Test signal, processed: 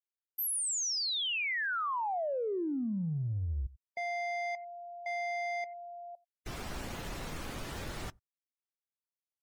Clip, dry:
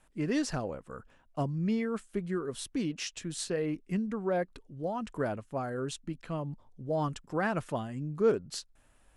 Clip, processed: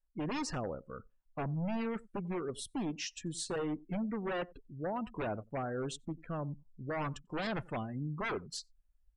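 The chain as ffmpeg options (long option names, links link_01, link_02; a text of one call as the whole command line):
ffmpeg -i in.wav -af "aeval=exprs='0.0355*(abs(mod(val(0)/0.0355+3,4)-2)-1)':channel_layout=same,aecho=1:1:92:0.1,afftdn=noise_reduction=30:noise_floor=-46,volume=-1.5dB" out.wav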